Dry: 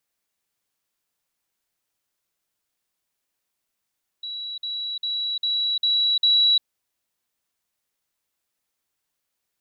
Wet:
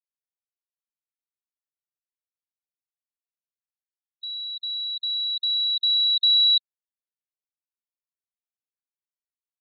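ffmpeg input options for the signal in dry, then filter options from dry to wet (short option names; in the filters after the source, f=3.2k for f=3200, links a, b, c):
-f lavfi -i "aevalsrc='pow(10,(-29.5+3*floor(t/0.4))/20)*sin(2*PI*3910*t)*clip(min(mod(t,0.4),0.35-mod(t,0.4))/0.005,0,1)':d=2.4:s=44100"
-af "afftfilt=real='re*gte(hypot(re,im),0.0251)':imag='im*gte(hypot(re,im),0.0251)':win_size=1024:overlap=0.75"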